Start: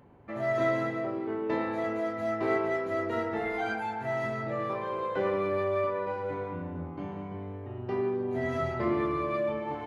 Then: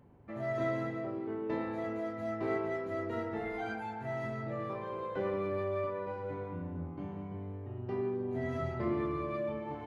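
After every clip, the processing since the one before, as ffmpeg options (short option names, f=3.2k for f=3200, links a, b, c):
-af "lowshelf=f=320:g=7.5,volume=-8dB"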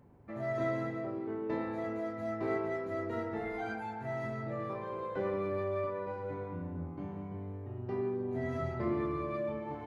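-af "equalizer=f=3k:t=o:w=0.41:g=-4"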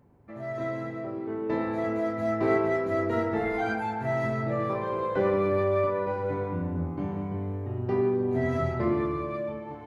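-af "dynaudnorm=f=420:g=7:m=9.5dB"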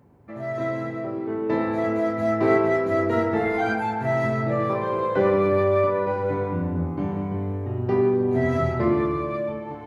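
-af "highpass=63,volume=5dB"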